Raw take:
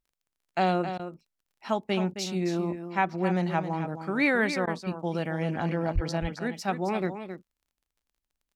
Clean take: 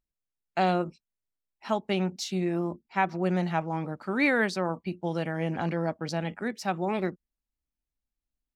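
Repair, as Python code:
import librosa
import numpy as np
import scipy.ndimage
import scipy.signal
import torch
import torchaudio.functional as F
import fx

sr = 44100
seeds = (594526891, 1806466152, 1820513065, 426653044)

y = fx.fix_declick_ar(x, sr, threshold=6.5)
y = fx.highpass(y, sr, hz=140.0, slope=24, at=(5.94, 6.06), fade=0.02)
y = fx.fix_interpolate(y, sr, at_s=(0.98, 1.44, 2.14, 4.66), length_ms=12.0)
y = fx.fix_echo_inverse(y, sr, delay_ms=267, level_db=-9.5)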